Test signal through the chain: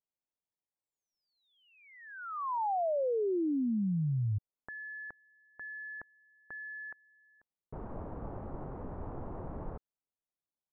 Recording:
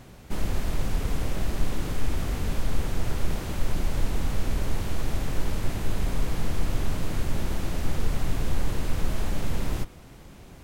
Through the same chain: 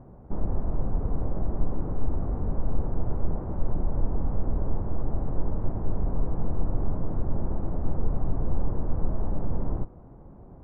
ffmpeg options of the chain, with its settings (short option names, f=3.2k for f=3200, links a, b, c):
-af "lowpass=f=1k:w=0.5412,lowpass=f=1k:w=1.3066"